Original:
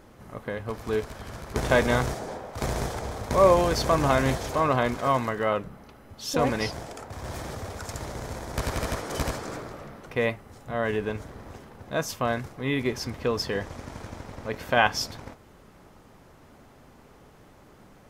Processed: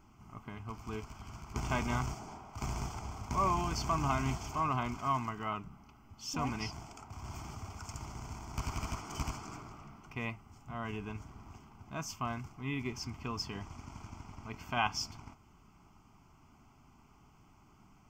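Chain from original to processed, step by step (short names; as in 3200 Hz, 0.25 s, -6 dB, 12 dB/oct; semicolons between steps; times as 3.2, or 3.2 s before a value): fixed phaser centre 2600 Hz, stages 8; gain -6.5 dB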